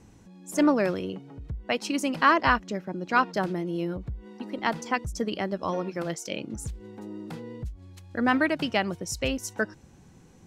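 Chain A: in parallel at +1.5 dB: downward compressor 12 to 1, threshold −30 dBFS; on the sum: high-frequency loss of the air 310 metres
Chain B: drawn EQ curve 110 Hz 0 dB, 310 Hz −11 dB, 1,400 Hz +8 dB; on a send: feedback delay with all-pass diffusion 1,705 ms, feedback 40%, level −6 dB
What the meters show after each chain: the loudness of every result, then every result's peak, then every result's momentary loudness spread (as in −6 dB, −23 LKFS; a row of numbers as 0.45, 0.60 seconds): −26.5, −23.0 LKFS; −8.0, −2.0 dBFS; 12, 14 LU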